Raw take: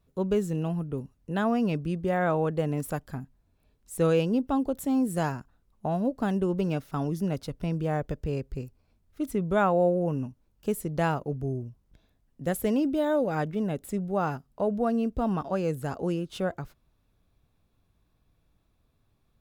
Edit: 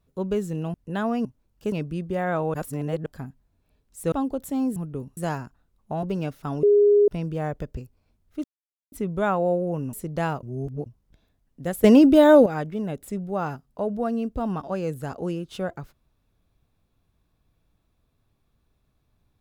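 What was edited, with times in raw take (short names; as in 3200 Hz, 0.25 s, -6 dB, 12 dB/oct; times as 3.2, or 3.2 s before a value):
0.74–1.15 move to 5.11
2.48–3 reverse
4.06–4.47 cut
5.97–6.52 cut
7.12–7.57 bleep 411 Hz -13 dBFS
8.26–8.59 cut
9.26 insert silence 0.48 s
10.27–10.74 move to 1.66
11.24–11.67 reverse
12.65–13.27 gain +12 dB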